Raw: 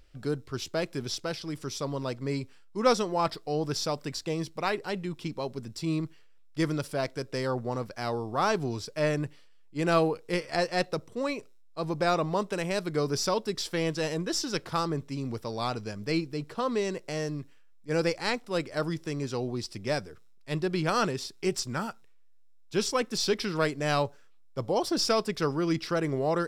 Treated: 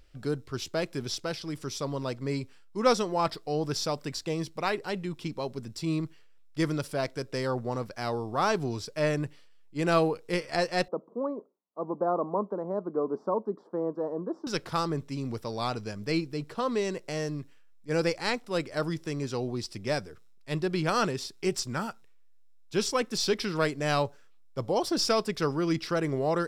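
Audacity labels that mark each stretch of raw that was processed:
10.880000	14.470000	elliptic band-pass 200–1100 Hz

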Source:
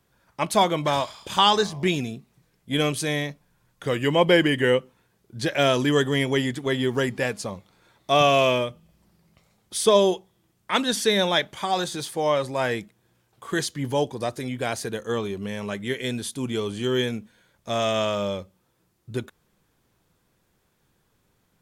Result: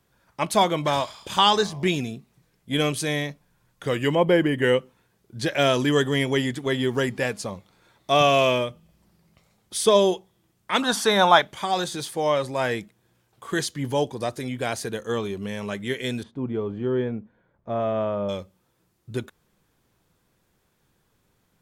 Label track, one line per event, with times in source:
4.150000	4.620000	bell 5000 Hz -10.5 dB 2.8 oct
10.820000	11.420000	band shelf 1000 Hz +12.5 dB 1.3 oct
16.230000	18.290000	LPF 1100 Hz

